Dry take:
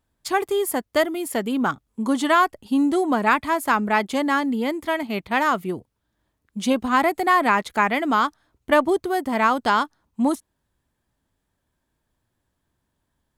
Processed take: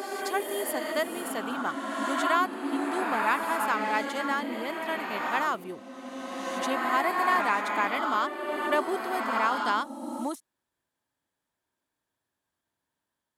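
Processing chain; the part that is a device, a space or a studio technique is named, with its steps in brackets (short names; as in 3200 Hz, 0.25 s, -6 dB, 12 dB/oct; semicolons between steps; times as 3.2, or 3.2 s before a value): ghost voice (reverse; reverb RT60 3.0 s, pre-delay 64 ms, DRR 1 dB; reverse; HPF 530 Hz 6 dB/oct); gain -7 dB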